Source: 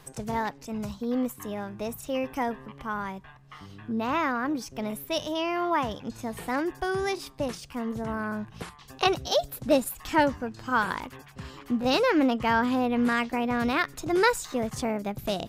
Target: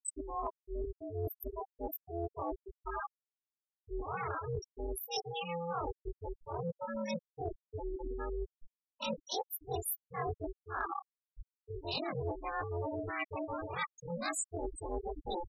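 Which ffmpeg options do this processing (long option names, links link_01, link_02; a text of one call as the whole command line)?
ffmpeg -i in.wav -af "afftfilt=real='re':imag='-im':win_size=2048:overlap=0.75,aemphasis=mode=production:type=50fm,bandreject=frequency=1700:width=6.5,aeval=exprs='val(0)*sin(2*PI*170*n/s)':channel_layout=same,afftfilt=real='re*gte(hypot(re,im),0.0447)':imag='im*gte(hypot(re,im),0.0447)':win_size=1024:overlap=0.75,lowpass=7200,highshelf=frequency=3500:gain=12,areverse,acompressor=threshold=-42dB:ratio=8,areverse,volume=7.5dB" out.wav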